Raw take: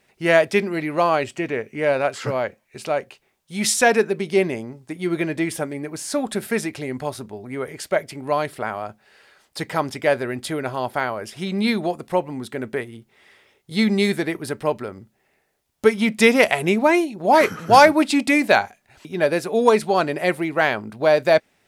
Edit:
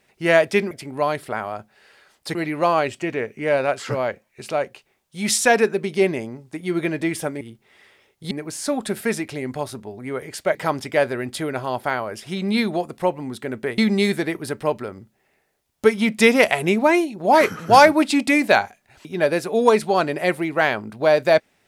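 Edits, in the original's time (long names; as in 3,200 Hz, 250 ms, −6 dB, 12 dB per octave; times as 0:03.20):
0:08.01–0:09.65: move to 0:00.71
0:12.88–0:13.78: move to 0:05.77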